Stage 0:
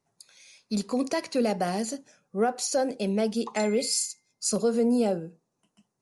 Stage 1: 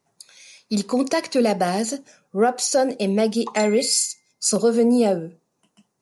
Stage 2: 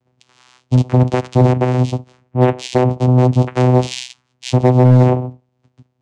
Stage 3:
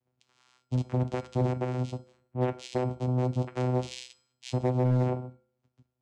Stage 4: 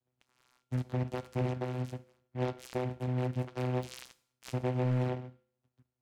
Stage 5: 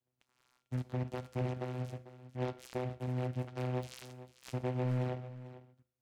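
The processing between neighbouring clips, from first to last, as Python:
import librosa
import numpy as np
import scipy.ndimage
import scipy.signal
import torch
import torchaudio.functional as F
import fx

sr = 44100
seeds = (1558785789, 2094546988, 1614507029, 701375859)

y1 = fx.low_shelf(x, sr, hz=85.0, db=-9.0)
y1 = y1 * librosa.db_to_amplitude(7.0)
y2 = fx.vocoder(y1, sr, bands=4, carrier='saw', carrier_hz=126.0)
y2 = np.clip(10.0 ** (13.0 / 20.0) * y2, -1.0, 1.0) / 10.0 ** (13.0 / 20.0)
y2 = y2 * librosa.db_to_amplitude(8.5)
y3 = fx.comb_fb(y2, sr, f0_hz=73.0, decay_s=0.59, harmonics='odd', damping=0.0, mix_pct=60)
y3 = y3 * librosa.db_to_amplitude(-8.5)
y4 = fx.noise_mod_delay(y3, sr, seeds[0], noise_hz=1500.0, depth_ms=0.053)
y4 = y4 * librosa.db_to_amplitude(-5.0)
y5 = y4 + 10.0 ** (-15.0 / 20.0) * np.pad(y4, (int(446 * sr / 1000.0), 0))[:len(y4)]
y5 = y5 * librosa.db_to_amplitude(-3.5)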